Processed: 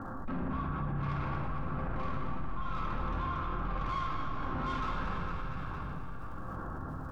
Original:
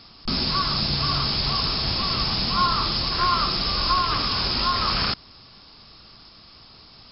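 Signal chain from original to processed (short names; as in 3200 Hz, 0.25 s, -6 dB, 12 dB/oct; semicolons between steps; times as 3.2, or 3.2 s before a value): steep low-pass 1700 Hz 96 dB/oct; limiter -22.5 dBFS, peak gain reduction 10.5 dB; tremolo triangle 1.1 Hz, depth 75%; soft clip -33.5 dBFS, distortion -11 dB; resonator 130 Hz, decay 1.5 s, mix 70%; crackle 170/s -75 dBFS; split-band echo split 810 Hz, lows 0.119 s, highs 0.231 s, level -7 dB; reverb RT60 1.2 s, pre-delay 4 ms, DRR -2.5 dB; fast leveller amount 70%; gain +1.5 dB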